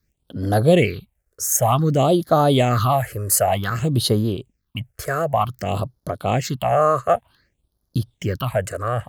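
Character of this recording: phasing stages 6, 0.54 Hz, lowest notch 220–2500 Hz

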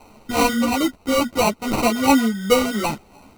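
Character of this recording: a quantiser's noise floor 10-bit, dither triangular; phasing stages 8, 2.9 Hz, lowest notch 600–3400 Hz; aliases and images of a low sample rate 1700 Hz, jitter 0%; a shimmering, thickened sound

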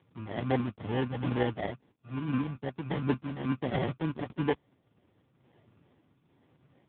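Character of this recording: phasing stages 2, 2.3 Hz, lowest notch 290–1500 Hz; aliases and images of a low sample rate 1300 Hz, jitter 0%; random-step tremolo; AMR-NB

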